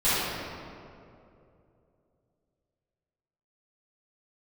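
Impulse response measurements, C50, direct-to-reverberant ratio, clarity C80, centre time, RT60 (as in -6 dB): -6.0 dB, -18.0 dB, -2.5 dB, 0.168 s, 2.7 s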